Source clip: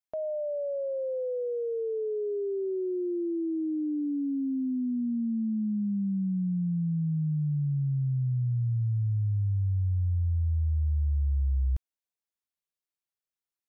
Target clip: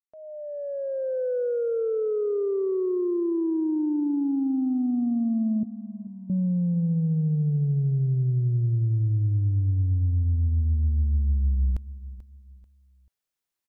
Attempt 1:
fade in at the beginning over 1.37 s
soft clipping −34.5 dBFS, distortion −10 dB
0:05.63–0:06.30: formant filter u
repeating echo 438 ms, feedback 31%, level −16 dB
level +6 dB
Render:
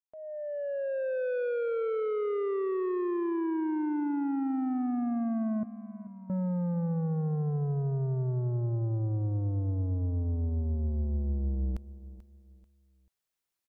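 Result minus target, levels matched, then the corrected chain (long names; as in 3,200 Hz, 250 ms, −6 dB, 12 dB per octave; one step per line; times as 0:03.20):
soft clipping: distortion +11 dB
fade in at the beginning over 1.37 s
soft clipping −24 dBFS, distortion −21 dB
0:05.63–0:06.30: formant filter u
repeating echo 438 ms, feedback 31%, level −16 dB
level +6 dB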